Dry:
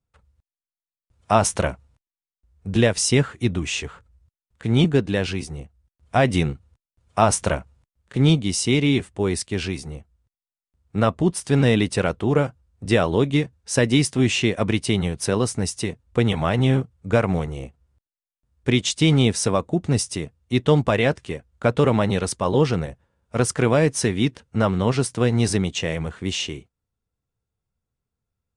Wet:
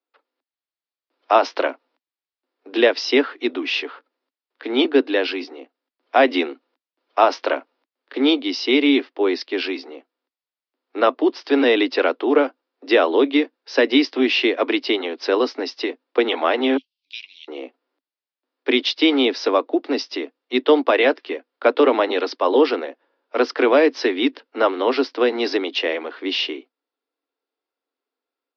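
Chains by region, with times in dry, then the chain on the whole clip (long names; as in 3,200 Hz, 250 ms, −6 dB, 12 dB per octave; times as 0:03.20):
0:16.77–0:17.48: elliptic high-pass filter 2,800 Hz, stop band 50 dB + high-shelf EQ 4,000 Hz +6.5 dB
whole clip: Butterworth high-pass 260 Hz 96 dB per octave; automatic gain control gain up to 3.5 dB; Butterworth low-pass 5,100 Hz 72 dB per octave; level +1.5 dB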